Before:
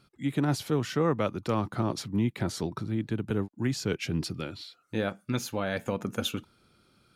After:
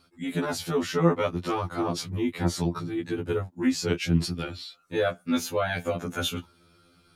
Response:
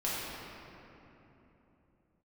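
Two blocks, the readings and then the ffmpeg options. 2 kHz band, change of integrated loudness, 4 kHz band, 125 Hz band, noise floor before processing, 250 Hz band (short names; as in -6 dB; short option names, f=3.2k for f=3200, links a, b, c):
+4.0 dB, +3.0 dB, +3.5 dB, +1.0 dB, -67 dBFS, +2.0 dB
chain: -af "afftfilt=real='re*2*eq(mod(b,4),0)':imag='im*2*eq(mod(b,4),0)':win_size=2048:overlap=0.75,volume=6dB"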